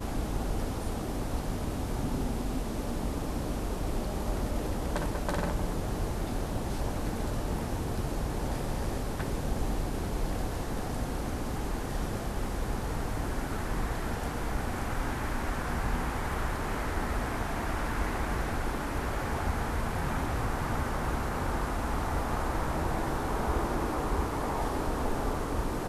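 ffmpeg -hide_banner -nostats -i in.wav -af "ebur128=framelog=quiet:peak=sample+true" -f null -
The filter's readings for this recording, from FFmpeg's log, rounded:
Integrated loudness:
  I:         -33.3 LUFS
  Threshold: -43.3 LUFS
Loudness range:
  LRA:         2.7 LU
  Threshold: -53.3 LUFS
  LRA low:   -34.4 LUFS
  LRA high:  -31.8 LUFS
Sample peak:
  Peak:      -16.4 dBFS
True peak:
  Peak:      -16.4 dBFS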